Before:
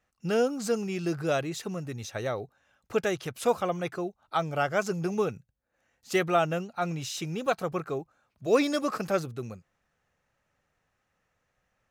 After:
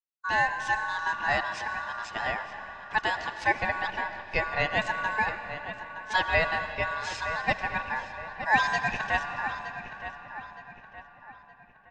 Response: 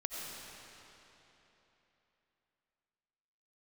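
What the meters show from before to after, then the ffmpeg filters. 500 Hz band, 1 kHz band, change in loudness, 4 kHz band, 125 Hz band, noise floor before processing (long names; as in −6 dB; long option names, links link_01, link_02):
−7.5 dB, +5.0 dB, +1.0 dB, +3.0 dB, −6.0 dB, −78 dBFS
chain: -filter_complex "[0:a]agate=range=-33dB:threshold=-49dB:ratio=3:detection=peak,lowpass=frequency=5100:width=0.5412,lowpass=frequency=5100:width=1.3066,aeval=exprs='val(0)*sin(2*PI*1300*n/s)':channel_layout=same,asplit=2[link_01][link_02];[link_02]adelay=918,lowpass=frequency=3000:poles=1,volume=-10.5dB,asplit=2[link_03][link_04];[link_04]adelay=918,lowpass=frequency=3000:poles=1,volume=0.45,asplit=2[link_05][link_06];[link_06]adelay=918,lowpass=frequency=3000:poles=1,volume=0.45,asplit=2[link_07][link_08];[link_08]adelay=918,lowpass=frequency=3000:poles=1,volume=0.45,asplit=2[link_09][link_10];[link_10]adelay=918,lowpass=frequency=3000:poles=1,volume=0.45[link_11];[link_01][link_03][link_05][link_07][link_09][link_11]amix=inputs=6:normalize=0,asplit=2[link_12][link_13];[1:a]atrim=start_sample=2205[link_14];[link_13][link_14]afir=irnorm=-1:irlink=0,volume=-7dB[link_15];[link_12][link_15]amix=inputs=2:normalize=0"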